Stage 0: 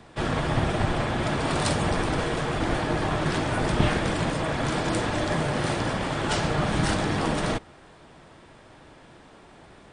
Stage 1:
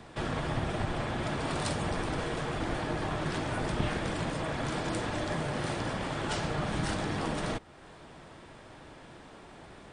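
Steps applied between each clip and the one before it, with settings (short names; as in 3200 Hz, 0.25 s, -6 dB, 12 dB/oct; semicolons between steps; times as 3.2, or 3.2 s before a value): compressor 1.5:1, threshold -42 dBFS, peak gain reduction 9.5 dB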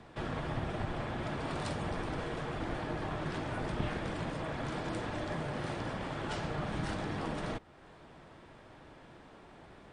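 high shelf 5400 Hz -9.5 dB; gain -4 dB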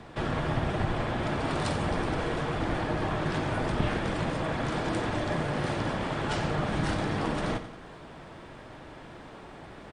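feedback echo 90 ms, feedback 54%, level -12 dB; reverse; upward compressor, threshold -48 dBFS; reverse; gain +7 dB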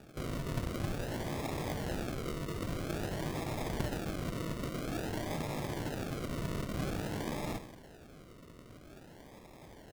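decimation with a swept rate 42×, swing 60% 0.5 Hz; gain -7.5 dB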